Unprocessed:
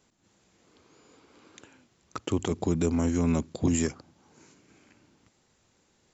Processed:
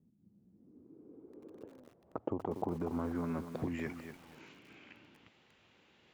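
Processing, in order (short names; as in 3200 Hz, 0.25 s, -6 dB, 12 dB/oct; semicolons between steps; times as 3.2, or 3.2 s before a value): HPF 120 Hz 6 dB/oct; compressor 10:1, threshold -35 dBFS, peak gain reduction 14 dB; low-pass sweep 200 Hz -> 2900 Hz, 0.33–4.29; lo-fi delay 0.24 s, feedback 35%, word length 9-bit, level -8.5 dB; gain +1 dB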